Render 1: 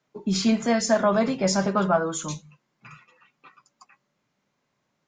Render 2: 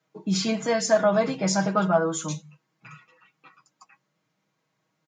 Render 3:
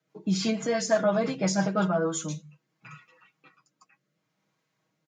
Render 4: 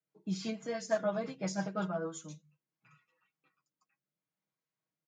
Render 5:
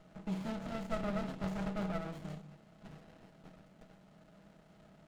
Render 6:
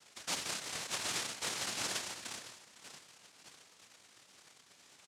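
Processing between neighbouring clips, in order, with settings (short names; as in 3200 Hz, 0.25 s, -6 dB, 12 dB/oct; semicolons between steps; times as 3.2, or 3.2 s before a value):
HPF 80 Hz; comb 6.3 ms, depth 67%; gain -2 dB
rotary speaker horn 6 Hz, later 0.65 Hz, at 1.51
upward expander 1.5:1, over -40 dBFS; gain -7 dB
per-bin compression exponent 0.4; fixed phaser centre 1600 Hz, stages 6; running maximum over 33 samples; gain -1.5 dB
noise vocoder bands 1; echo 0.508 s -16.5 dB; gain -1 dB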